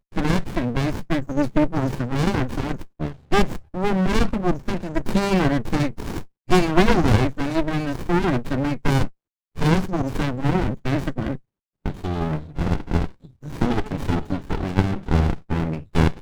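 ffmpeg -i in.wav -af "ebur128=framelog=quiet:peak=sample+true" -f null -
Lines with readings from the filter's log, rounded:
Integrated loudness:
  I:         -23.3 LUFS
  Threshold: -33.5 LUFS
Loudness range:
  LRA:         5.2 LU
  Threshold: -43.5 LUFS
  LRA low:   -26.6 LUFS
  LRA high:  -21.3 LUFS
Sample peak:
  Peak:       -3.0 dBFS
True peak:
  Peak:       -3.0 dBFS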